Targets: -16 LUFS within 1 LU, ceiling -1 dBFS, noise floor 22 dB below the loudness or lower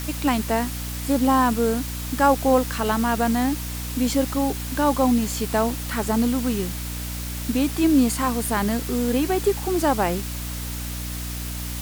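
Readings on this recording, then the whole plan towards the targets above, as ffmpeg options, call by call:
hum 60 Hz; highest harmonic 300 Hz; hum level -29 dBFS; noise floor -30 dBFS; noise floor target -45 dBFS; loudness -23.0 LUFS; peak level -6.5 dBFS; loudness target -16.0 LUFS
-> -af "bandreject=f=60:t=h:w=4,bandreject=f=120:t=h:w=4,bandreject=f=180:t=h:w=4,bandreject=f=240:t=h:w=4,bandreject=f=300:t=h:w=4"
-af "afftdn=nr=15:nf=-30"
-af "volume=2.24,alimiter=limit=0.891:level=0:latency=1"

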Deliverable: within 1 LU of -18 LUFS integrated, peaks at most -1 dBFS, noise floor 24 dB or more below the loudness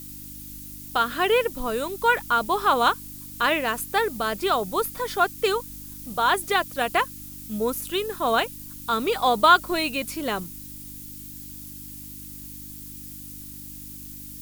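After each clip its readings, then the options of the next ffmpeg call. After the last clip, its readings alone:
hum 50 Hz; highest harmonic 300 Hz; hum level -42 dBFS; noise floor -40 dBFS; noise floor target -48 dBFS; loudness -23.5 LUFS; peak level -4.5 dBFS; loudness target -18.0 LUFS
-> -af "bandreject=f=50:t=h:w=4,bandreject=f=100:t=h:w=4,bandreject=f=150:t=h:w=4,bandreject=f=200:t=h:w=4,bandreject=f=250:t=h:w=4,bandreject=f=300:t=h:w=4"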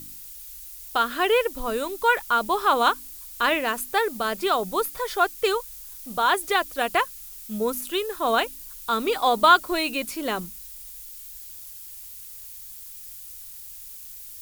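hum not found; noise floor -41 dBFS; noise floor target -48 dBFS
-> -af "afftdn=nr=7:nf=-41"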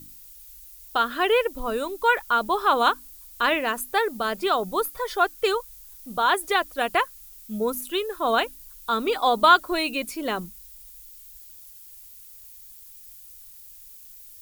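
noise floor -47 dBFS; noise floor target -48 dBFS
-> -af "afftdn=nr=6:nf=-47"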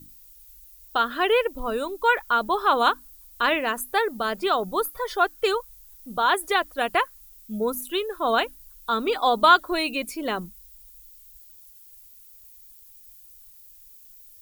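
noise floor -50 dBFS; loudness -24.0 LUFS; peak level -4.5 dBFS; loudness target -18.0 LUFS
-> -af "volume=2,alimiter=limit=0.891:level=0:latency=1"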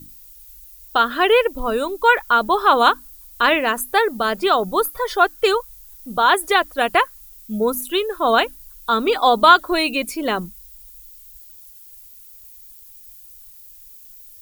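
loudness -18.0 LUFS; peak level -1.0 dBFS; noise floor -44 dBFS

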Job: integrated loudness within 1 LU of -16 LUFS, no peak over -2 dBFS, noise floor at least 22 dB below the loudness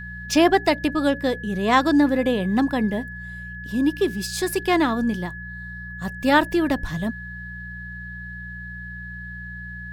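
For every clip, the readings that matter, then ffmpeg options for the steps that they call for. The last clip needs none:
hum 60 Hz; highest harmonic 180 Hz; hum level -35 dBFS; steady tone 1.7 kHz; tone level -35 dBFS; loudness -21.5 LUFS; peak level -5.0 dBFS; loudness target -16.0 LUFS
-> -af "bandreject=f=60:t=h:w=4,bandreject=f=120:t=h:w=4,bandreject=f=180:t=h:w=4"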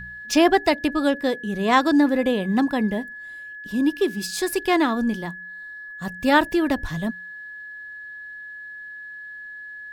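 hum not found; steady tone 1.7 kHz; tone level -35 dBFS
-> -af "bandreject=f=1700:w=30"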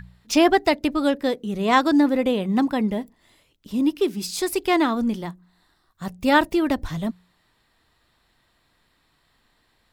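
steady tone not found; loudness -22.0 LUFS; peak level -5.0 dBFS; loudness target -16.0 LUFS
-> -af "volume=2,alimiter=limit=0.794:level=0:latency=1"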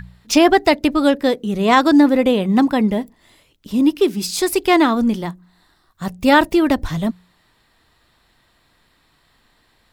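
loudness -16.0 LUFS; peak level -2.0 dBFS; noise floor -60 dBFS

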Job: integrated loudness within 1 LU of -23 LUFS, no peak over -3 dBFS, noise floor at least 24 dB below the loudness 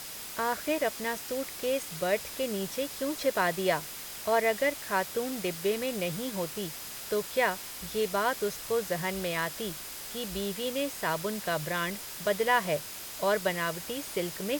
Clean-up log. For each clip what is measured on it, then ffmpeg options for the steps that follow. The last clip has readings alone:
steady tone 5 kHz; tone level -54 dBFS; noise floor -42 dBFS; noise floor target -55 dBFS; loudness -31.0 LUFS; peak level -12.0 dBFS; loudness target -23.0 LUFS
-> -af "bandreject=f=5000:w=30"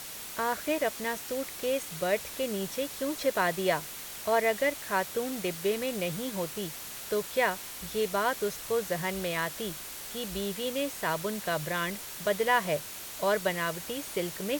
steady tone not found; noise floor -42 dBFS; noise floor target -55 dBFS
-> -af "afftdn=nr=13:nf=-42"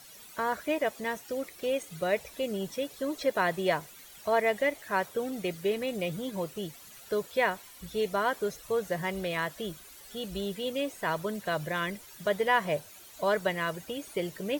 noise floor -51 dBFS; noise floor target -56 dBFS
-> -af "afftdn=nr=6:nf=-51"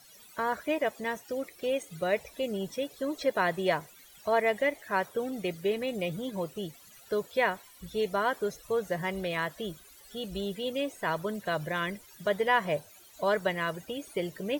noise floor -55 dBFS; noise floor target -56 dBFS
-> -af "afftdn=nr=6:nf=-55"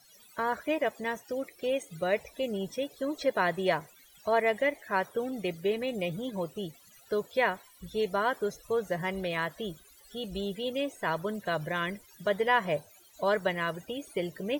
noise floor -58 dBFS; loudness -31.5 LUFS; peak level -12.0 dBFS; loudness target -23.0 LUFS
-> -af "volume=2.66"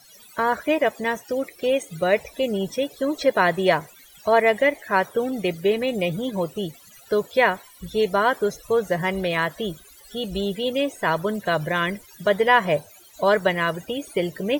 loudness -23.0 LUFS; peak level -3.5 dBFS; noise floor -50 dBFS

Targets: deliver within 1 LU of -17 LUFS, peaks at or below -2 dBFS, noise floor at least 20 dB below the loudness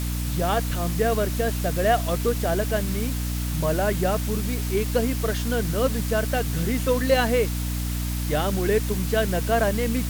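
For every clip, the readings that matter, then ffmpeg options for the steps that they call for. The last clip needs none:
hum 60 Hz; highest harmonic 300 Hz; hum level -25 dBFS; noise floor -27 dBFS; noise floor target -44 dBFS; loudness -24.0 LUFS; peak level -7.5 dBFS; loudness target -17.0 LUFS
-> -af "bandreject=f=60:t=h:w=6,bandreject=f=120:t=h:w=6,bandreject=f=180:t=h:w=6,bandreject=f=240:t=h:w=6,bandreject=f=300:t=h:w=6"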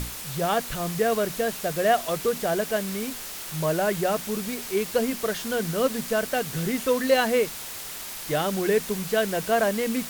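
hum not found; noise floor -37 dBFS; noise floor target -46 dBFS
-> -af "afftdn=nr=9:nf=-37"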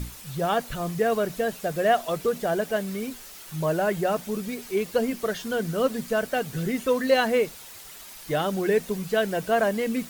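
noise floor -44 dBFS; noise floor target -46 dBFS
-> -af "afftdn=nr=6:nf=-44"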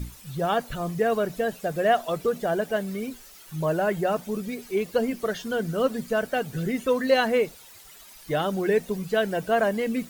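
noise floor -48 dBFS; loudness -26.0 LUFS; peak level -9.0 dBFS; loudness target -17.0 LUFS
-> -af "volume=2.82,alimiter=limit=0.794:level=0:latency=1"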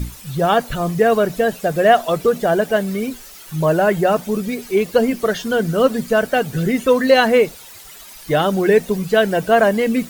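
loudness -17.0 LUFS; peak level -2.0 dBFS; noise floor -39 dBFS

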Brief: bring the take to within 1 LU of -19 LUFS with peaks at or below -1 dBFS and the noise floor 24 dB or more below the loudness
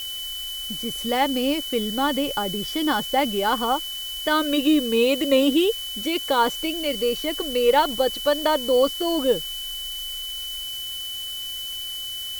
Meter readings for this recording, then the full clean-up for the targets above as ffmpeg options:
steady tone 3 kHz; tone level -30 dBFS; noise floor -32 dBFS; noise floor target -47 dBFS; loudness -23.0 LUFS; peak level -7.0 dBFS; loudness target -19.0 LUFS
-> -af "bandreject=f=3000:w=30"
-af "afftdn=nr=15:nf=-32"
-af "volume=1.58"

